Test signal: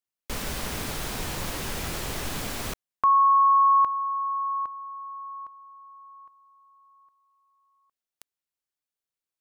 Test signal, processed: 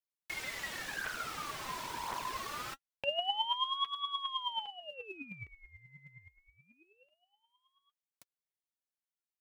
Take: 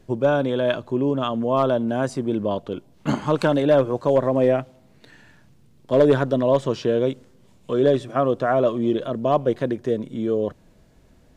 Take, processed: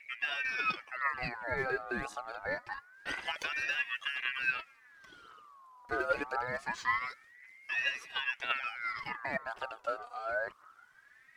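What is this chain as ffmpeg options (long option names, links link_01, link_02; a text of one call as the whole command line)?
ffmpeg -i in.wav -filter_complex "[0:a]acrossover=split=540|6500[link_01][link_02][link_03];[link_01]acompressor=threshold=-36dB:ratio=2[link_04];[link_02]acompressor=threshold=-26dB:ratio=5[link_05];[link_03]acompressor=threshold=-55dB:ratio=1.5[link_06];[link_04][link_05][link_06]amix=inputs=3:normalize=0,aphaser=in_gain=1:out_gain=1:delay=4.5:decay=0.65:speed=0.94:type=triangular,aeval=exprs='val(0)*sin(2*PI*1600*n/s+1600*0.4/0.25*sin(2*PI*0.25*n/s))':channel_layout=same,volume=-8dB" out.wav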